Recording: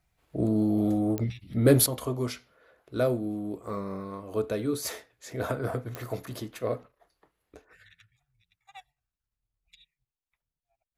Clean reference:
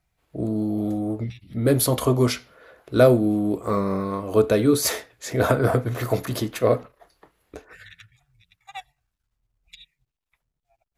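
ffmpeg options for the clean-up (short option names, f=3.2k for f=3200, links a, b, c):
-af "adeclick=t=4,asetnsamples=n=441:p=0,asendcmd='1.86 volume volume 11dB',volume=0dB"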